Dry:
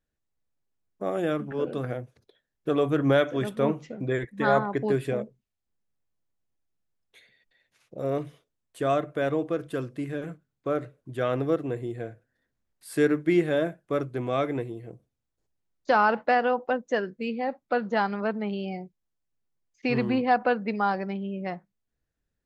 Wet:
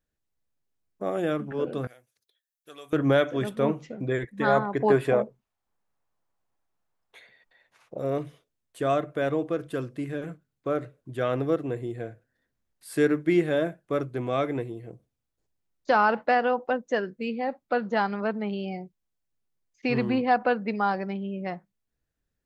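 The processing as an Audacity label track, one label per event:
1.870000	2.930000	first-order pre-emphasis coefficient 0.97
4.800000	7.980000	parametric band 940 Hz +13 dB 1.8 octaves

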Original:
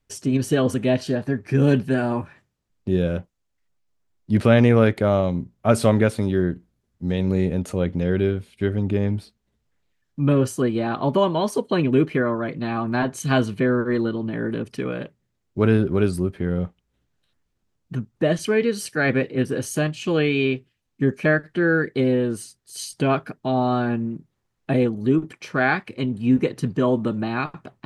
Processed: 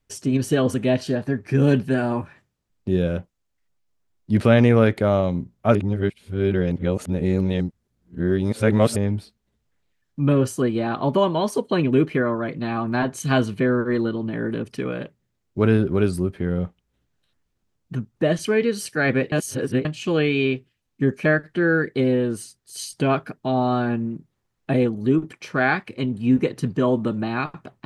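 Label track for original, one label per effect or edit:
5.750000	8.960000	reverse
19.320000	19.850000	reverse

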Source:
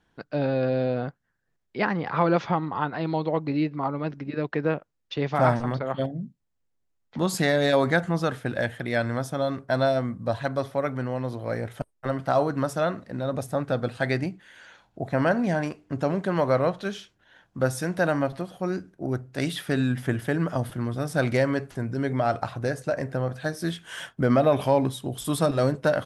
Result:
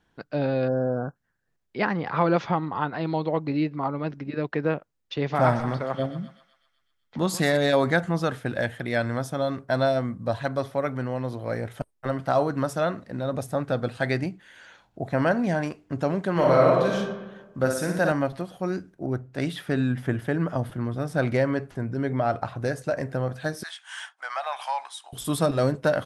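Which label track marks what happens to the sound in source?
0.680000	1.160000	time-frequency box erased 1,700–5,100 Hz
5.160000	7.570000	feedback echo with a high-pass in the loop 126 ms, feedback 67%, high-pass 1,000 Hz, level −10.5 dB
16.320000	16.950000	thrown reverb, RT60 1.2 s, DRR −3 dB
17.580000	18.120000	flutter between parallel walls apart 9.9 metres, dies away in 0.71 s
19.050000	22.590000	high-shelf EQ 3,400 Hz −8 dB
23.630000	25.130000	Chebyshev band-pass filter 790–9,900 Hz, order 4

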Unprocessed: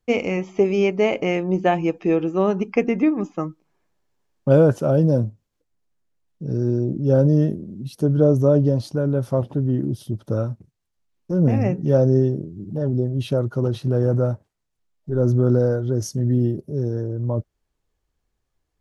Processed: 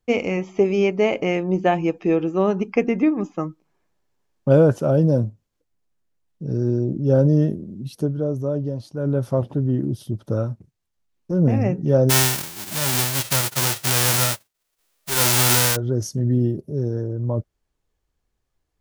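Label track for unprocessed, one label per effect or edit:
7.990000	9.090000	duck −8 dB, fades 0.14 s
12.090000	15.750000	spectral envelope flattened exponent 0.1

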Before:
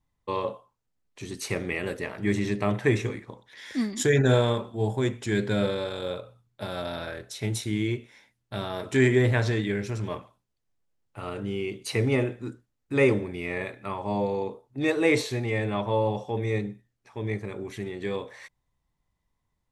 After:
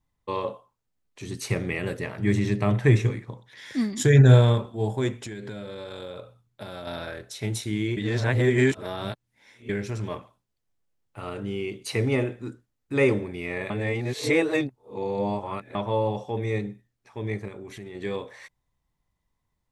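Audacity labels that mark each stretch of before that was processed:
1.250000	4.660000	parametric band 130 Hz +10.5 dB
5.230000	6.870000	downward compressor 12 to 1, threshold −32 dBFS
7.970000	9.690000	reverse
13.700000	15.750000	reverse
17.480000	17.950000	downward compressor 2.5 to 1, threshold −38 dBFS

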